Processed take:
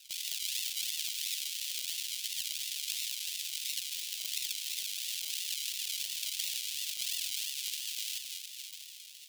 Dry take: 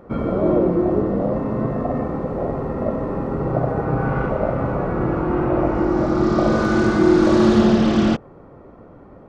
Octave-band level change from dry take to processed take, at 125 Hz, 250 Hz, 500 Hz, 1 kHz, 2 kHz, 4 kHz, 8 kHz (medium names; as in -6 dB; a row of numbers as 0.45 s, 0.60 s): under -40 dB, under -40 dB, under -40 dB, under -40 dB, -14.0 dB, +5.0 dB, no reading